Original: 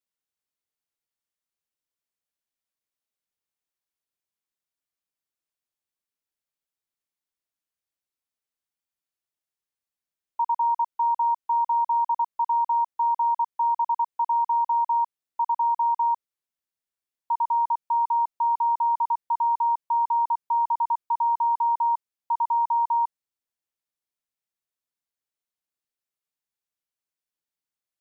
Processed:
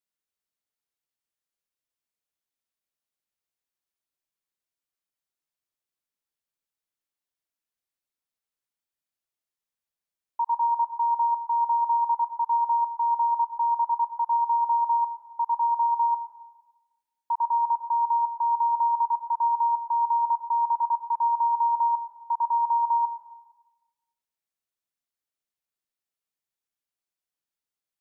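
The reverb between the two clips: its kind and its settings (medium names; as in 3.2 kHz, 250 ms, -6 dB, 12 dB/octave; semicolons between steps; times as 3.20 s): algorithmic reverb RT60 1.1 s, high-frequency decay 0.85×, pre-delay 60 ms, DRR 10.5 dB; trim -1.5 dB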